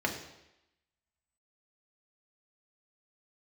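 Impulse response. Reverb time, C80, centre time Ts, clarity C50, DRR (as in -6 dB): 0.90 s, 10.0 dB, 22 ms, 7.5 dB, 0.5 dB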